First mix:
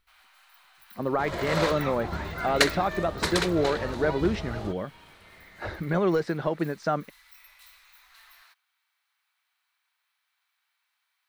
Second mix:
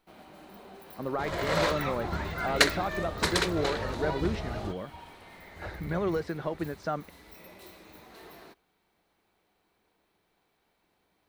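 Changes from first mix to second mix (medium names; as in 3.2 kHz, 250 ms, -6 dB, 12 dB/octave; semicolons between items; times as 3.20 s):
speech -5.5 dB; first sound: remove high-pass 1.2 kHz 24 dB/octave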